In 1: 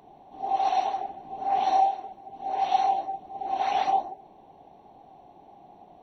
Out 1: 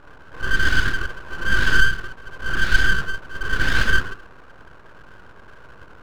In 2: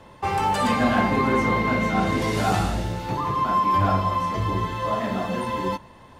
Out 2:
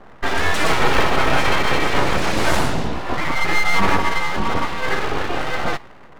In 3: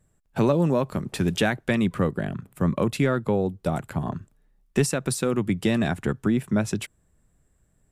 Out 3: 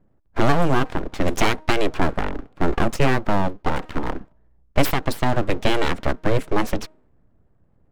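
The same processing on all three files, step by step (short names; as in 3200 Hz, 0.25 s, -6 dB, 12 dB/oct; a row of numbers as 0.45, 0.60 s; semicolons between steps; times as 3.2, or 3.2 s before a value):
de-hum 312.9 Hz, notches 4; low-pass opened by the level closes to 1000 Hz, open at -17 dBFS; full-wave rectifier; normalise peaks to -2 dBFS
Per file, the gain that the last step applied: +10.0, +7.0, +6.5 dB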